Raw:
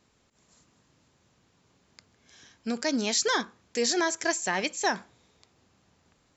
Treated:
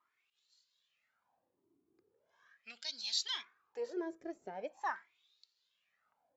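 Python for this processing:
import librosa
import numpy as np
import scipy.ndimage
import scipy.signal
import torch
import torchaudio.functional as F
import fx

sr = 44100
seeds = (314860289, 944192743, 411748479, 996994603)

y = np.where(x < 0.0, 10.0 ** (-3.0 / 20.0) * x, x)
y = fx.filter_lfo_bandpass(y, sr, shape='sine', hz=0.41, low_hz=310.0, high_hz=4300.0, q=5.6)
y = fx.comb_cascade(y, sr, direction='rising', hz=0.6)
y = F.gain(torch.from_numpy(y), 6.0).numpy()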